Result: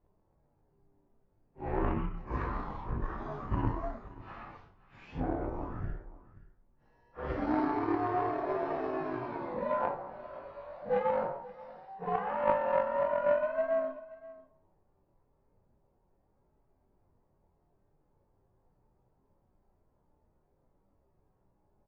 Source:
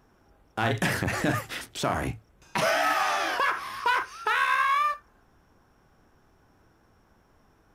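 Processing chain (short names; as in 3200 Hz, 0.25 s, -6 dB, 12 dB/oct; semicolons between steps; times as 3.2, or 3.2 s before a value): inharmonic rescaling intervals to 128%; added harmonics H 2 -18 dB, 3 -14 dB, 4 -30 dB, 8 -39 dB, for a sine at -14.5 dBFS; wide varispeed 0.354×; LPF 1400 Hz 12 dB/oct; echo 0.53 s -19 dB; gain +3.5 dB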